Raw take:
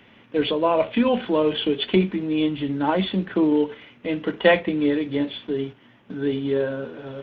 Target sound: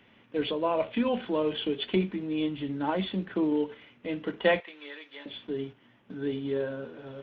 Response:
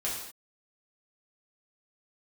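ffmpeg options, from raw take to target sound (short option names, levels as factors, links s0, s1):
-filter_complex "[0:a]asettb=1/sr,asplit=3[s0][s1][s2];[s0]atrim=end=4.604[s3];[s1]atrim=start=4.6:end=5.26,asetpts=PTS-STARTPTS,afade=t=in:d=0.004:c=qsin,afade=t=out:st=0.656:d=0.004:c=qsin,highpass=1100[s4];[s2]atrim=start=5.256[s5];[s3][s4]acrossfade=d=0.004:c1=hsin:c2=qsin[s6];[s6][s5]acrossfade=d=0.004:c1=qsin:c2=hsin,volume=0.422"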